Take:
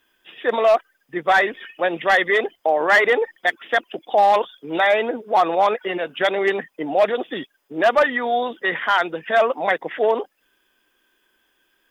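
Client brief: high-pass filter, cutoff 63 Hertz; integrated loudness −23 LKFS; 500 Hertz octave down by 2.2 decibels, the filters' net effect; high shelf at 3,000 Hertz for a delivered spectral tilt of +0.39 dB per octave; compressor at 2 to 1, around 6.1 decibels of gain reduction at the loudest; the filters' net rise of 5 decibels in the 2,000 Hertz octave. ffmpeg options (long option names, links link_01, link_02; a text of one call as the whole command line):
ffmpeg -i in.wav -af "highpass=63,equalizer=frequency=500:width_type=o:gain=-3.5,equalizer=frequency=2000:width_type=o:gain=3.5,highshelf=frequency=3000:gain=8,acompressor=threshold=-19dB:ratio=2,volume=-1dB" out.wav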